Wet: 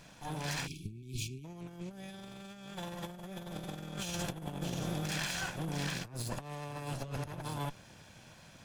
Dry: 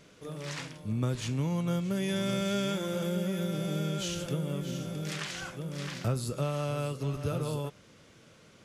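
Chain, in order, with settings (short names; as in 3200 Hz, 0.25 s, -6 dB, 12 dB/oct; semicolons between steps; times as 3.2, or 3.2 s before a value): minimum comb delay 1.2 ms; negative-ratio compressor -38 dBFS, ratio -0.5; spectral delete 0.67–1.45, 420–2200 Hz; gain -1 dB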